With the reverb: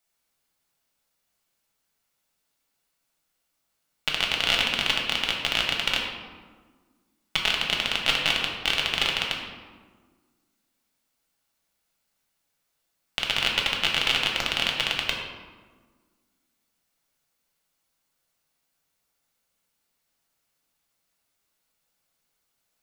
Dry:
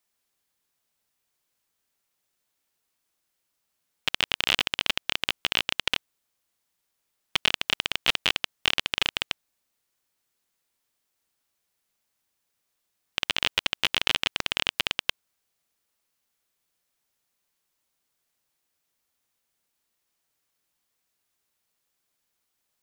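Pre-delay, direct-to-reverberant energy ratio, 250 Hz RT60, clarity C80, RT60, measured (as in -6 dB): 3 ms, -1.0 dB, 2.1 s, 4.5 dB, 1.5 s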